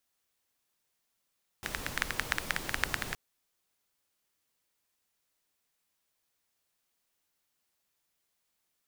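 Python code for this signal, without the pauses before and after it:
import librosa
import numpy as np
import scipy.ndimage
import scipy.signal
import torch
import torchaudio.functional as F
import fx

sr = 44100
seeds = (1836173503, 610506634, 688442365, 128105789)

y = fx.rain(sr, seeds[0], length_s=1.52, drops_per_s=11.0, hz=1700.0, bed_db=-3.5)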